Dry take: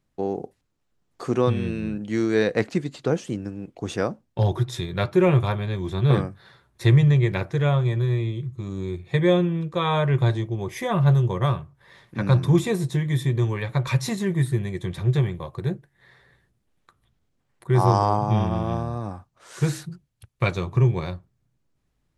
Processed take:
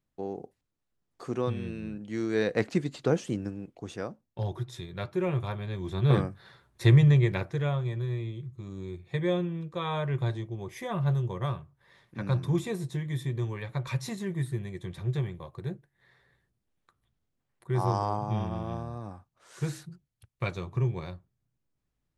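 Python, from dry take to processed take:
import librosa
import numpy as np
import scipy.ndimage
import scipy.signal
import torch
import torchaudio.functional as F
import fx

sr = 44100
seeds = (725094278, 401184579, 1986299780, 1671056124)

y = fx.gain(x, sr, db=fx.line((2.13, -9.0), (2.79, -2.5), (3.48, -2.5), (3.92, -11.0), (5.33, -11.0), (6.26, -2.5), (7.15, -2.5), (7.78, -9.0)))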